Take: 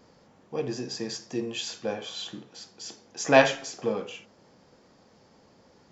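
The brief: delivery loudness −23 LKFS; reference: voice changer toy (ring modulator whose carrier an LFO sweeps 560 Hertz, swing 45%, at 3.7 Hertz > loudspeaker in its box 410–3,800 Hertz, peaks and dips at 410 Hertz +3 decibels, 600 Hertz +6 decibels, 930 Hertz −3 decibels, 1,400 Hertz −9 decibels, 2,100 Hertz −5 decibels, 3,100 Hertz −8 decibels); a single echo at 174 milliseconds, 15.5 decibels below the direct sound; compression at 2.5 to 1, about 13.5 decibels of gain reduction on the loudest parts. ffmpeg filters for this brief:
ffmpeg -i in.wav -af "acompressor=threshold=-32dB:ratio=2.5,aecho=1:1:174:0.168,aeval=exprs='val(0)*sin(2*PI*560*n/s+560*0.45/3.7*sin(2*PI*3.7*n/s))':channel_layout=same,highpass=410,equalizer=frequency=410:width_type=q:width=4:gain=3,equalizer=frequency=600:width_type=q:width=4:gain=6,equalizer=frequency=930:width_type=q:width=4:gain=-3,equalizer=frequency=1400:width_type=q:width=4:gain=-9,equalizer=frequency=2100:width_type=q:width=4:gain=-5,equalizer=frequency=3100:width_type=q:width=4:gain=-8,lowpass=frequency=3800:width=0.5412,lowpass=frequency=3800:width=1.3066,volume=20dB" out.wav

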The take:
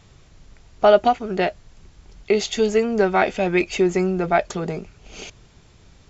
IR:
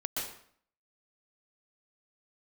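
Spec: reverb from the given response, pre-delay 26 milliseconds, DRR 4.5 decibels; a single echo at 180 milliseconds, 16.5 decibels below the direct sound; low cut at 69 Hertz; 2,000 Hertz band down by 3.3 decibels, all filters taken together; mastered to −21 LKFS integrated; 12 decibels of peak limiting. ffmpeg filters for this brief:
-filter_complex "[0:a]highpass=69,equalizer=frequency=2000:width_type=o:gain=-4.5,alimiter=limit=-14dB:level=0:latency=1,aecho=1:1:180:0.15,asplit=2[link_01][link_02];[1:a]atrim=start_sample=2205,adelay=26[link_03];[link_02][link_03]afir=irnorm=-1:irlink=0,volume=-9dB[link_04];[link_01][link_04]amix=inputs=2:normalize=0,volume=3dB"

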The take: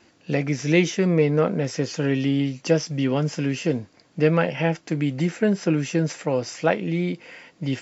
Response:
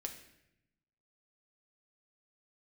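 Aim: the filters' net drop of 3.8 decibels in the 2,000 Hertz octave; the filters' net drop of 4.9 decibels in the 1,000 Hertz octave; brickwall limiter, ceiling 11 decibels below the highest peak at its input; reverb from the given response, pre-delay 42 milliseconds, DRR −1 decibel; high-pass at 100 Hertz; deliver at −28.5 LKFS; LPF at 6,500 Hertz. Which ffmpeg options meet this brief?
-filter_complex "[0:a]highpass=100,lowpass=6500,equalizer=frequency=1000:width_type=o:gain=-6.5,equalizer=frequency=2000:width_type=o:gain=-3,alimiter=limit=-19dB:level=0:latency=1,asplit=2[link_01][link_02];[1:a]atrim=start_sample=2205,adelay=42[link_03];[link_02][link_03]afir=irnorm=-1:irlink=0,volume=3dB[link_04];[link_01][link_04]amix=inputs=2:normalize=0,volume=-3.5dB"

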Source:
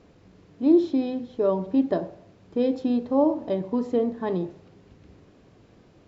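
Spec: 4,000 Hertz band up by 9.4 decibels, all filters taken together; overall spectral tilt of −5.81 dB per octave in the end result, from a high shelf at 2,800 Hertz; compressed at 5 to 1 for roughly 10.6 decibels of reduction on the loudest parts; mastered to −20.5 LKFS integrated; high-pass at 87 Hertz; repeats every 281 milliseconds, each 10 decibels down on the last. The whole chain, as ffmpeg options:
ffmpeg -i in.wav -af "highpass=87,highshelf=frequency=2800:gain=3.5,equalizer=frequency=4000:width_type=o:gain=8.5,acompressor=threshold=-25dB:ratio=5,aecho=1:1:281|562|843|1124:0.316|0.101|0.0324|0.0104,volume=10dB" out.wav

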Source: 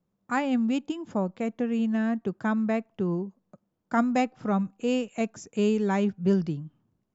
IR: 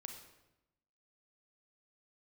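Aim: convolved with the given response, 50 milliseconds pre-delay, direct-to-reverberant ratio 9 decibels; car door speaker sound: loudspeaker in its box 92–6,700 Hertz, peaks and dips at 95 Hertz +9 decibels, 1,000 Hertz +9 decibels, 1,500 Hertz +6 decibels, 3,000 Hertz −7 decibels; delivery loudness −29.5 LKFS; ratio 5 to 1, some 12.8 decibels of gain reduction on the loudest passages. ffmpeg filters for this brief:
-filter_complex "[0:a]acompressor=threshold=-34dB:ratio=5,asplit=2[link_01][link_02];[1:a]atrim=start_sample=2205,adelay=50[link_03];[link_02][link_03]afir=irnorm=-1:irlink=0,volume=-4.5dB[link_04];[link_01][link_04]amix=inputs=2:normalize=0,highpass=92,equalizer=frequency=95:width_type=q:width=4:gain=9,equalizer=frequency=1000:width_type=q:width=4:gain=9,equalizer=frequency=1500:width_type=q:width=4:gain=6,equalizer=frequency=3000:width_type=q:width=4:gain=-7,lowpass=frequency=6700:width=0.5412,lowpass=frequency=6700:width=1.3066,volume=6.5dB"

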